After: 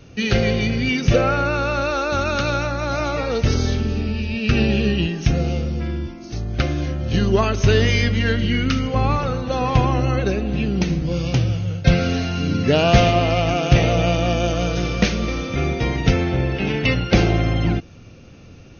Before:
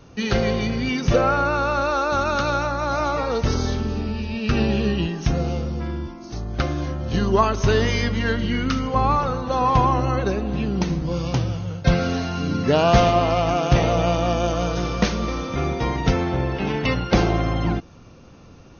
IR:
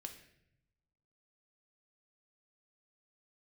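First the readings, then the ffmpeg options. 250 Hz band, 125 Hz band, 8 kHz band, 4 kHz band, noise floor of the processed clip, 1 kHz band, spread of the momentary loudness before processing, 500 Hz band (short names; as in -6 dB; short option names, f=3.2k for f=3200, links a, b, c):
+2.0 dB, +4.0 dB, n/a, +4.0 dB, -42 dBFS, -2.5 dB, 7 LU, +1.0 dB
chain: -af "equalizer=f=100:t=o:w=0.67:g=4,equalizer=f=1k:t=o:w=0.67:g=-9,equalizer=f=2.5k:t=o:w=0.67:g=5,volume=2dB"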